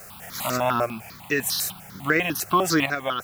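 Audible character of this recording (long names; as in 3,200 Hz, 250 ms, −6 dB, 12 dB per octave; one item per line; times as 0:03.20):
a quantiser's noise floor 8 bits, dither triangular
sample-and-hold tremolo
notches that jump at a steady rate 10 Hz 930–3,200 Hz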